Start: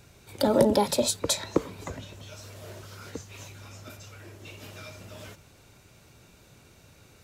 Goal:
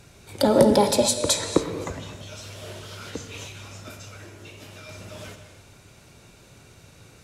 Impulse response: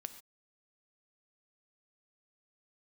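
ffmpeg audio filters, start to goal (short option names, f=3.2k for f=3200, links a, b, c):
-filter_complex "[0:a]asettb=1/sr,asplit=3[a][b][c];[a]atrim=end=2.354[d];[b]atrim=start=2.35:end=3.63,asetpts=PTS-STARTPTS,afade=t=in:d=0.004:c=qsin,afade=t=out:st=1.276:d=0.004:c=qsin,equalizer=f=3.2k:t=o:w=0.66:g=7[e];[c]atrim=start=3.626[f];[d][e]acrossfade=d=0.004:c1=hsin:c2=qsin[g];[g][f]acrossfade=d=0.004:c1=qsin:c2=hsin,asettb=1/sr,asplit=3[h][i][j];[h]atrim=end=4.234[k];[i]atrim=start=4.23:end=4.89,asetpts=PTS-STARTPTS,afade=t=in:d=0.004:c=qsin,afade=t=out:st=0.656:d=0.004:c=qsin,acompressor=threshold=-44dB:ratio=6[l];[j]atrim=start=4.886[m];[k][l]acrossfade=d=0.004:c1=hsin:c2=qsin[n];[n][m]acrossfade=d=0.004:c1=qsin:c2=hsin[o];[1:a]atrim=start_sample=2205,asetrate=22491,aresample=44100[p];[o][p]afir=irnorm=-1:irlink=0,volume=4.5dB"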